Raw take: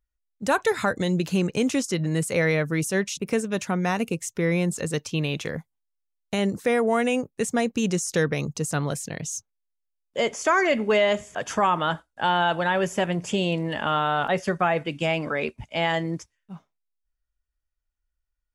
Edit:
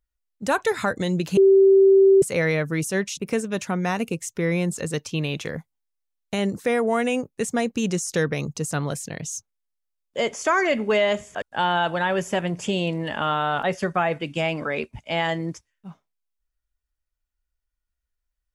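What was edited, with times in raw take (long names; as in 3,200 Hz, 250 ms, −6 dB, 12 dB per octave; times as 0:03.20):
0:01.37–0:02.22: beep over 388 Hz −10.5 dBFS
0:11.42–0:12.07: remove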